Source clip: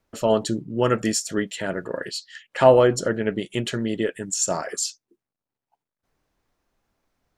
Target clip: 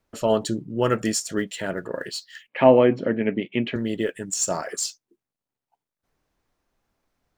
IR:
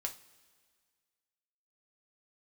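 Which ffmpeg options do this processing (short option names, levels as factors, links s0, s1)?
-filter_complex "[0:a]acrossover=split=1700[s0][s1];[s1]acrusher=bits=5:mode=log:mix=0:aa=0.000001[s2];[s0][s2]amix=inputs=2:normalize=0,asettb=1/sr,asplit=3[s3][s4][s5];[s3]atrim=end=2.484[s6];[s4]atrim=start=2.48:end=3.76,asetpts=PTS-STARTPTS,afade=t=in:d=0.004:c=qsin,afade=t=out:st=1.276:d=0.004:c=qsin,highpass=110,equalizer=f=250:t=q:w=4:g=9,equalizer=f=1400:t=q:w=4:g=-8,equalizer=f=2300:t=q:w=4:g=8,lowpass=f=3000:w=0.5412,lowpass=f=3000:w=1.3066[s7];[s5]atrim=start=3.756[s8];[s6][s7]acrossfade=d=0.004:c1=hsin:c2=qsin[s9];[s9][s8]acrossfade=d=0.004:c1=qsin:c2=hsin,volume=0.891"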